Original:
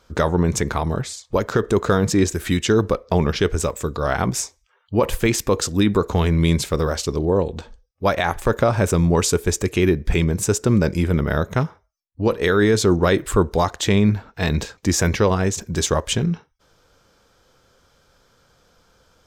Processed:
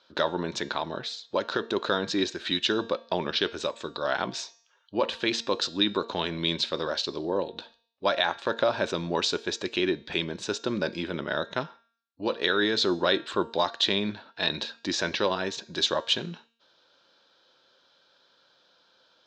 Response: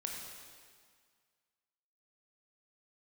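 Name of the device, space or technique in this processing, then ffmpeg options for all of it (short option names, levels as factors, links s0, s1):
phone earpiece: -af "highpass=450,equalizer=f=450:t=q:w=4:g=-9,equalizer=f=760:t=q:w=4:g=-7,equalizer=f=1200:t=q:w=4:g=-8,equalizer=f=2100:t=q:w=4:g=-9,equalizer=f=3900:t=q:w=4:g=8,lowpass=f=4500:w=0.5412,lowpass=f=4500:w=1.3066,bandreject=f=230.4:t=h:w=4,bandreject=f=460.8:t=h:w=4,bandreject=f=691.2:t=h:w=4,bandreject=f=921.6:t=h:w=4,bandreject=f=1152:t=h:w=4,bandreject=f=1382.4:t=h:w=4,bandreject=f=1612.8:t=h:w=4,bandreject=f=1843.2:t=h:w=4,bandreject=f=2073.6:t=h:w=4,bandreject=f=2304:t=h:w=4,bandreject=f=2534.4:t=h:w=4,bandreject=f=2764.8:t=h:w=4,bandreject=f=2995.2:t=h:w=4,bandreject=f=3225.6:t=h:w=4,bandreject=f=3456:t=h:w=4,bandreject=f=3686.4:t=h:w=4,bandreject=f=3916.8:t=h:w=4,bandreject=f=4147.2:t=h:w=4,bandreject=f=4377.6:t=h:w=4,bandreject=f=4608:t=h:w=4,bandreject=f=4838.4:t=h:w=4,bandreject=f=5068.8:t=h:w=4,bandreject=f=5299.2:t=h:w=4,bandreject=f=5529.6:t=h:w=4,bandreject=f=5760:t=h:w=4,bandreject=f=5990.4:t=h:w=4,bandreject=f=6220.8:t=h:w=4,bandreject=f=6451.2:t=h:w=4,bandreject=f=6681.6:t=h:w=4,bandreject=f=6912:t=h:w=4,bandreject=f=7142.4:t=h:w=4,bandreject=f=7372.8:t=h:w=4,bandreject=f=7603.2:t=h:w=4,bandreject=f=7833.6:t=h:w=4"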